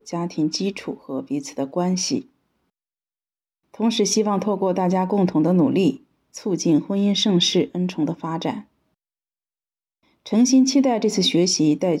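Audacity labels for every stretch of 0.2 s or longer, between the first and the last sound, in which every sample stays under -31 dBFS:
2.210000	3.750000	silence
5.950000	6.360000	silence
8.600000	10.260000	silence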